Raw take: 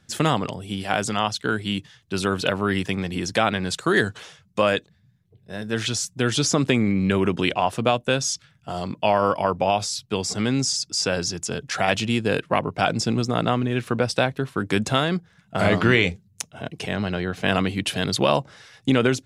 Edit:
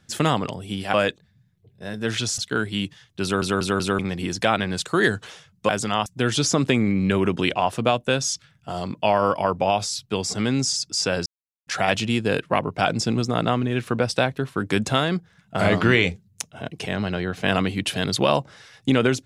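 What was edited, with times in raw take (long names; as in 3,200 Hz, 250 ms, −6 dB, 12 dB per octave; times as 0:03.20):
0:00.94–0:01.31: swap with 0:04.62–0:06.06
0:02.16: stutter in place 0.19 s, 4 plays
0:11.26–0:11.67: silence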